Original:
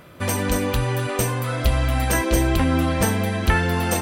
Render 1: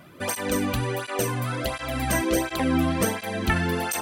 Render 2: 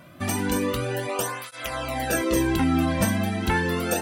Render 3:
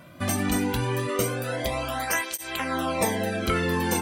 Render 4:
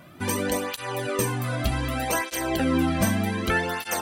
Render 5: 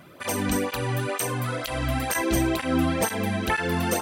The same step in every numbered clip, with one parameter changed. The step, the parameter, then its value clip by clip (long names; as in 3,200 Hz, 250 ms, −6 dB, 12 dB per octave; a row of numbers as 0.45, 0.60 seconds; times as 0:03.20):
through-zero flanger with one copy inverted, nulls at: 1.4, 0.33, 0.21, 0.65, 2.1 Hertz